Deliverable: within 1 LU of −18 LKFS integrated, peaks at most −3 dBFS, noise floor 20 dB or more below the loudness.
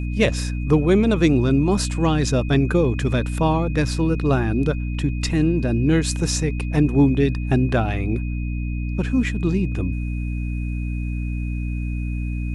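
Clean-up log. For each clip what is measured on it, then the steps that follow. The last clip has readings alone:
mains hum 60 Hz; hum harmonics up to 300 Hz; level of the hum −22 dBFS; interfering tone 2,500 Hz; level of the tone −40 dBFS; integrated loudness −21.5 LKFS; sample peak −5.5 dBFS; target loudness −18.0 LKFS
→ mains-hum notches 60/120/180/240/300 Hz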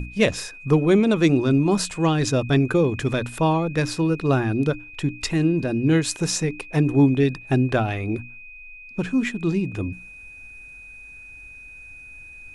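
mains hum none found; interfering tone 2,500 Hz; level of the tone −40 dBFS
→ notch filter 2,500 Hz, Q 30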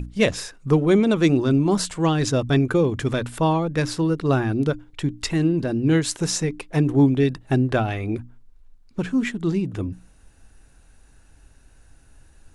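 interfering tone none found; integrated loudness −22.0 LKFS; sample peak −6.0 dBFS; target loudness −18.0 LKFS
→ level +4 dB
brickwall limiter −3 dBFS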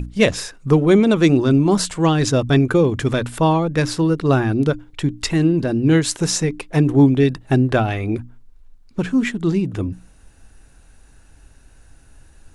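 integrated loudness −18.0 LKFS; sample peak −3.0 dBFS; background noise floor −49 dBFS

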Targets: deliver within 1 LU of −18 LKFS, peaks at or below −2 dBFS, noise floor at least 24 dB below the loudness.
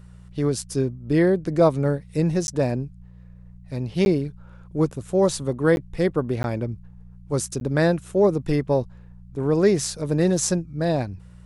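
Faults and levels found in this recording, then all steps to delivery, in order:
number of dropouts 5; longest dropout 11 ms; mains hum 60 Hz; hum harmonics up to 180 Hz; level of the hum −41 dBFS; integrated loudness −23.0 LKFS; sample peak −6.0 dBFS; target loudness −18.0 LKFS
→ repair the gap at 0:02.47/0:04.05/0:05.76/0:06.43/0:07.60, 11 ms
hum removal 60 Hz, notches 3
level +5 dB
brickwall limiter −2 dBFS

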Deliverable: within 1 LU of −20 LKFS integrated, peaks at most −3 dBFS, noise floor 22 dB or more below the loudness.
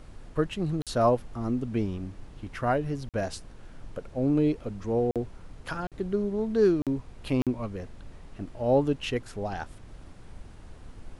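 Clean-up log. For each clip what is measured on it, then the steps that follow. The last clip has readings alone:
number of dropouts 6; longest dropout 47 ms; background noise floor −49 dBFS; target noise floor −51 dBFS; integrated loudness −29.0 LKFS; sample peak −12.0 dBFS; target loudness −20.0 LKFS
→ repair the gap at 0:00.82/0:03.09/0:05.11/0:05.87/0:06.82/0:07.42, 47 ms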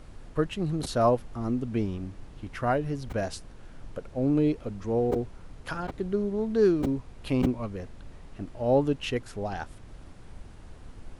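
number of dropouts 0; background noise floor −48 dBFS; target noise floor −51 dBFS
→ noise reduction from a noise print 6 dB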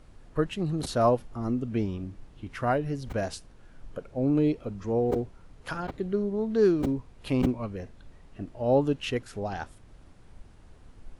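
background noise floor −53 dBFS; integrated loudness −28.5 LKFS; sample peak −12.0 dBFS; target loudness −20.0 LKFS
→ level +8.5 dB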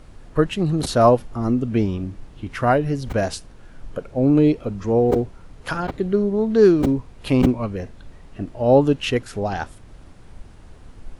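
integrated loudness −20.0 LKFS; sample peak −3.5 dBFS; background noise floor −45 dBFS

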